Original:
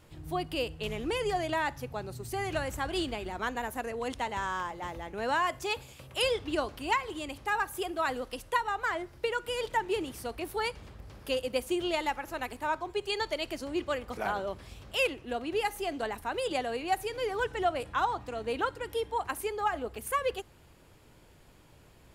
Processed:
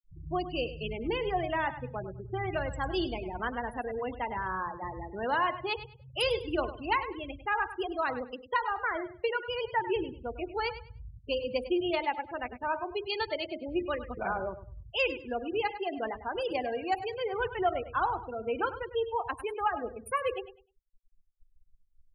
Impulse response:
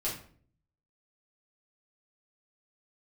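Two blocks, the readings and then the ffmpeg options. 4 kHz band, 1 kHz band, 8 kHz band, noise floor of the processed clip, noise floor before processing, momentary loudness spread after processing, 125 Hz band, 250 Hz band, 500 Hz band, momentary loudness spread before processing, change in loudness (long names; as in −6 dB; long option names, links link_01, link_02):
−1.5 dB, 0.0 dB, below −10 dB, −62 dBFS, −58 dBFS, 7 LU, +0.5 dB, +0.5 dB, +0.5 dB, 7 LU, 0.0 dB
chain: -filter_complex "[0:a]asplit=2[link_01][link_02];[1:a]atrim=start_sample=2205,lowshelf=frequency=97:gain=7.5,highshelf=frequency=3000:gain=-3.5[link_03];[link_02][link_03]afir=irnorm=-1:irlink=0,volume=-13dB[link_04];[link_01][link_04]amix=inputs=2:normalize=0,afftfilt=real='re*gte(hypot(re,im),0.0316)':imag='im*gte(hypot(re,im),0.0316)':win_size=1024:overlap=0.75,aecho=1:1:101|202|303:0.224|0.0515|0.0118,volume=-1.5dB"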